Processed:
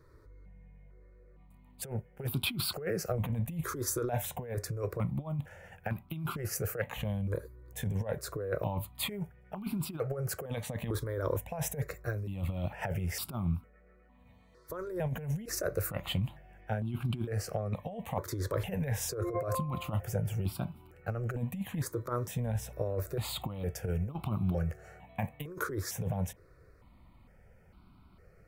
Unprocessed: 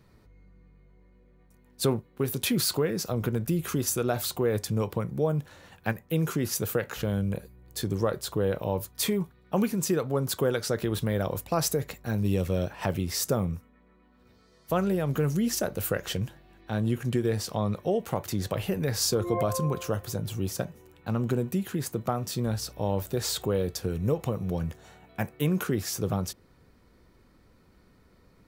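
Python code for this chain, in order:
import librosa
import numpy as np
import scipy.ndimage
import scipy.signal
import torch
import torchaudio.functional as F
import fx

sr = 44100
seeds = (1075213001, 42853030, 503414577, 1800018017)

y = fx.high_shelf(x, sr, hz=3700.0, db=-8.0)
y = fx.over_compress(y, sr, threshold_db=-29.0, ratio=-0.5)
y = fx.phaser_held(y, sr, hz=2.2, low_hz=760.0, high_hz=1800.0)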